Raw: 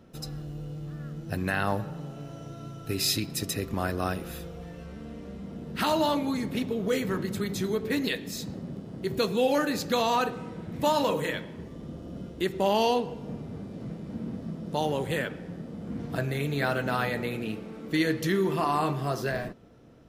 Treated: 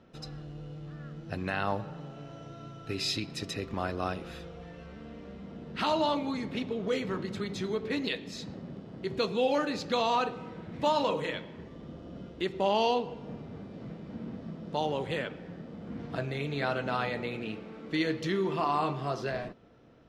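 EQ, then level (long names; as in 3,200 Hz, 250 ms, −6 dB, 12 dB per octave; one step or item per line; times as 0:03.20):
low-pass filter 4,300 Hz 12 dB per octave
dynamic equaliser 1,700 Hz, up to −6 dB, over −47 dBFS, Q 2.7
low-shelf EQ 450 Hz −6 dB
0.0 dB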